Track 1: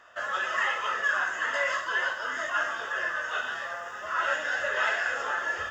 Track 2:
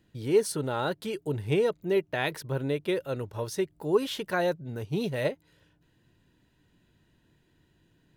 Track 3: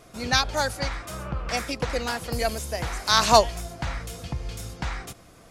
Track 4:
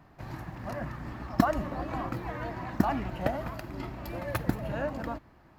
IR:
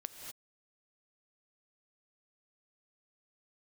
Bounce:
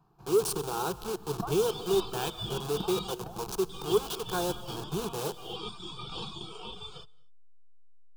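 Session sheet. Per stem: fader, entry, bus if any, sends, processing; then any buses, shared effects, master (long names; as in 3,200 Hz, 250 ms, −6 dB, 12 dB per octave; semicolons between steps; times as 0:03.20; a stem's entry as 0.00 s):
−4.0 dB, 1.35 s, muted 0:03.15–0:03.69, send −17.5 dB, reverb reduction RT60 0.71 s; ring modulation 1,800 Hz
+0.5 dB, 0.00 s, send −5.5 dB, hold until the input has moved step −28 dBFS; low-shelf EQ 150 Hz −12 dB; soft clipping −19 dBFS, distortion −18 dB
−14.0 dB, 0.10 s, no send, inverse Chebyshev band-stop filter 680–9,600 Hz
−7.0 dB, 0.00 s, no send, sample-and-hold tremolo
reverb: on, pre-delay 3 ms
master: phaser with its sweep stopped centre 390 Hz, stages 8; saturating transformer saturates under 130 Hz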